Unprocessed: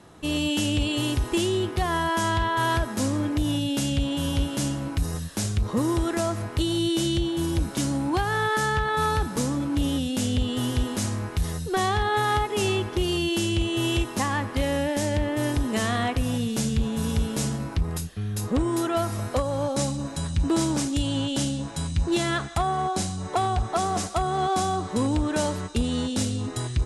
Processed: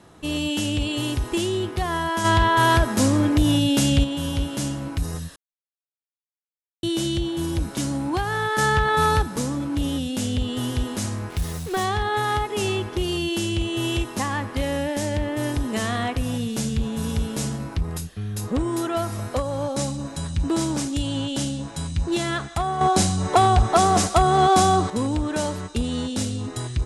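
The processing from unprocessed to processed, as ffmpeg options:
-filter_complex "[0:a]asplit=3[s0][s1][s2];[s0]afade=t=out:st=2.24:d=0.02[s3];[s1]acontrast=68,afade=t=in:st=2.24:d=0.02,afade=t=out:st=4.03:d=0.02[s4];[s2]afade=t=in:st=4.03:d=0.02[s5];[s3][s4][s5]amix=inputs=3:normalize=0,asettb=1/sr,asplit=3[s6][s7][s8];[s6]atrim=end=8.584[s9];[s7]atrim=start=8.58:end=9.22,asetpts=PTS-STARTPTS,afade=t=in:d=0.004:c=qsin,afade=t=out:st=0.636:d=0.004:c=qsin,acontrast=21[s10];[s8]atrim=start=9.216[s11];[s9][s10]acrossfade=d=0.004:c1=hsin:c2=qsin[s12];[s12][s11]acrossfade=d=0.004:c1=qsin:c2=hsin,asplit=3[s13][s14][s15];[s13]afade=t=out:st=11.29:d=0.02[s16];[s14]acrusher=bits=5:mix=0:aa=0.5,afade=t=in:st=11.29:d=0.02,afade=t=out:st=11.83:d=0.02[s17];[s15]afade=t=in:st=11.83:d=0.02[s18];[s16][s17][s18]amix=inputs=3:normalize=0,asplit=5[s19][s20][s21][s22][s23];[s19]atrim=end=5.36,asetpts=PTS-STARTPTS,afade=t=out:st=5.356:d=0.004:c=hsin[s24];[s20]atrim=start=5.36:end=6.83,asetpts=PTS-STARTPTS,volume=0[s25];[s21]atrim=start=6.83:end=22.812,asetpts=PTS-STARTPTS,afade=t=in:d=0.004:c=hsin[s26];[s22]atrim=start=22.808:end=24.902,asetpts=PTS-STARTPTS,volume=2.51[s27];[s23]atrim=start=24.898[s28];[s24][s25][s26]concat=n=3:v=0:a=1[s29];[s29][s27]acrossfade=d=0.004:c1=hsin:c2=hsin[s30];[s30][s28]acrossfade=d=0.004:c1=hsin:c2=hsin"

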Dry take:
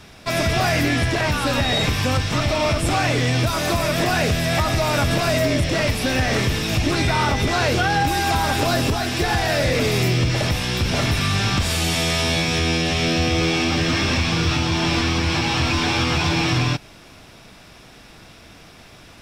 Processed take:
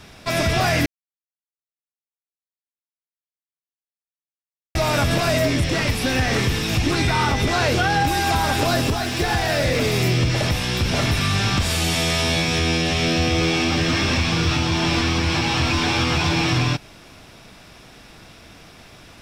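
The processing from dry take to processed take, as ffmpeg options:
-filter_complex "[0:a]asettb=1/sr,asplit=3[s0][s1][s2];[s0]atrim=end=5.494[s3];[s1]atrim=start=5.49:end=7.33,asetpts=PTS-STARTPTS,afade=t=in:d=0.004:c=qsin,afade=t=out:st=1.836:d=0.004:c=qsin,bandreject=f=610:w=7.2[s4];[s2]atrim=start=7.326[s5];[s3][s4]acrossfade=d=0.004:c1=hsin:c2=qsin[s6];[s6][s5]acrossfade=d=0.004:c1=qsin:c2=hsin,asettb=1/sr,asplit=3[s7][s8][s9];[s7]atrim=end=8.814[s10];[s8]atrim=start=8.81:end=10.05,asetpts=PTS-STARTPTS,afade=t=in:d=0.004:c=qsin,afade=t=out:st=1.236:d=0.004:c=qsin,aeval=exprs='sgn(val(0))*max(abs(val(0))-0.00944,0)':c=same[s11];[s9]atrim=start=10.046[s12];[s10][s11]acrossfade=d=0.004:c1=hsin:c2=qsin[s13];[s13][s12]acrossfade=d=0.004:c1=qsin:c2=hsin,asplit=3[s14][s15][s16];[s14]atrim=end=0.86,asetpts=PTS-STARTPTS,afade=t=out:st=0.856:d=0.004:c=hsin[s17];[s15]atrim=start=0.86:end=4.75,asetpts=PTS-STARTPTS,volume=0[s18];[s16]atrim=start=4.75,asetpts=PTS-STARTPTS,afade=t=in:d=0.004:c=hsin[s19];[s17][s18][s19]concat=n=3:v=0:a=1"

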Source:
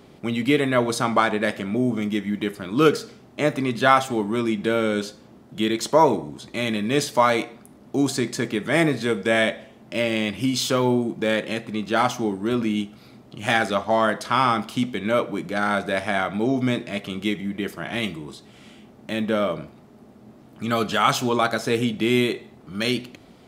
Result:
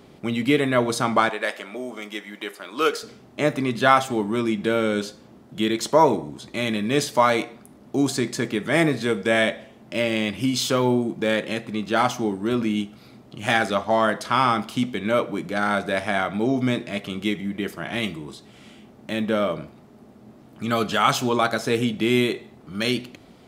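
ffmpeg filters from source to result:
-filter_complex "[0:a]asettb=1/sr,asplit=3[s0][s1][s2];[s0]atrim=end=1.294[s3];[s1]atrim=start=1.29:end=3.03,asetpts=PTS-STARTPTS,afade=t=in:d=0.004:c=qsin,afade=t=out:st=1.736:d=0.004:c=qsin,highpass=550[s4];[s2]atrim=start=3.026[s5];[s3][s4]acrossfade=d=0.004:c1=hsin:c2=qsin[s6];[s6][s5]acrossfade=d=0.004:c1=qsin:c2=hsin"

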